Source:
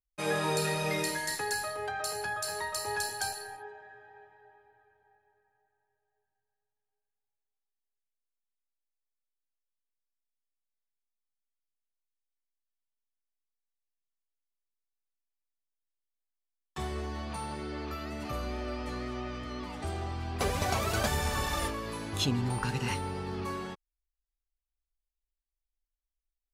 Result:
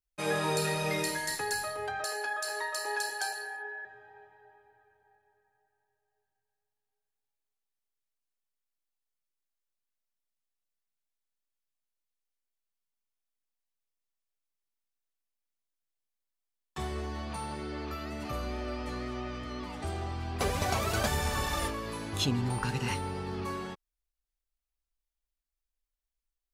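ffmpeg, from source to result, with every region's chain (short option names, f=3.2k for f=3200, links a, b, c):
-filter_complex "[0:a]asettb=1/sr,asplit=3[a][b][c];[a]atrim=end=2.044[d];[b]atrim=start=2.04:end=3.85,asetpts=PTS-STARTPTS,afade=t=in:d=0.004:c=qsin,afade=t=out:st=1.806:d=0.004:c=qsin,highpass=f=320:w=0.5412,highpass=f=320:w=1.3066,highshelf=f=10k:g=-6,aeval=exprs='val(0)+0.0112*sin(2*PI*1700*n/s)':c=same[e];[c]atrim=start=3.846[f];[d][e]acrossfade=d=0.004:c1=hsin:c2=qsin[g];[g][f]acrossfade=d=0.004:c1=qsin:c2=hsin"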